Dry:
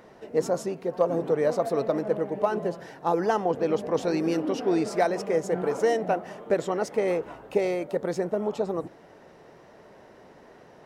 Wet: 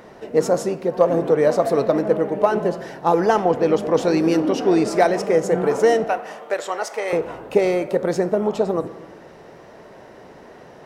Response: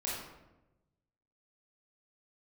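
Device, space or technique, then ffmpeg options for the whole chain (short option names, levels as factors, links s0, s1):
saturated reverb return: -filter_complex "[0:a]asettb=1/sr,asplit=3[s0][s1][s2];[s0]atrim=end=6.044[s3];[s1]atrim=start=6.04:end=7.13,asetpts=PTS-STARTPTS,afade=t=in:d=0.004:c=qsin,afade=t=out:st=1.086:d=0.004:c=qsin,highpass=760[s4];[s2]atrim=start=7.126[s5];[s3][s4]acrossfade=d=0.004:c1=hsin:c2=qsin[s6];[s6][s5]acrossfade=d=0.004:c1=qsin:c2=hsin,asplit=2[s7][s8];[1:a]atrim=start_sample=2205[s9];[s8][s9]afir=irnorm=-1:irlink=0,asoftclip=type=tanh:threshold=0.112,volume=0.211[s10];[s7][s10]amix=inputs=2:normalize=0,volume=2.11"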